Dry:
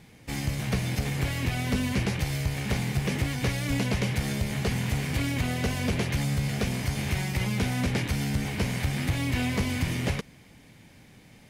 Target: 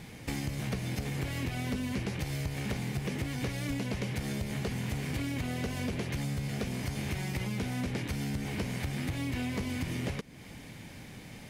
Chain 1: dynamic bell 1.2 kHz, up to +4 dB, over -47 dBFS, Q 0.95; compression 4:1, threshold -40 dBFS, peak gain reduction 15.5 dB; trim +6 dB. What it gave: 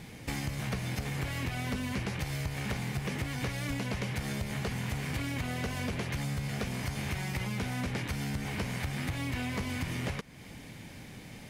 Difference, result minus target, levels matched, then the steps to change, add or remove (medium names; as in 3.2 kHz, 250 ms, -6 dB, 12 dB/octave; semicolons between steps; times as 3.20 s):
1 kHz band +3.0 dB
change: dynamic bell 320 Hz, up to +4 dB, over -47 dBFS, Q 0.95